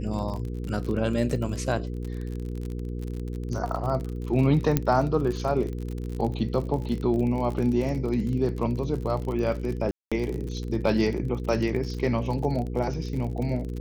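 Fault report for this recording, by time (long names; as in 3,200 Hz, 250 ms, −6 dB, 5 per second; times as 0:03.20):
surface crackle 41 per second −31 dBFS
mains hum 60 Hz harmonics 8 −32 dBFS
0:04.77: click −8 dBFS
0:09.91–0:10.12: drop-out 206 ms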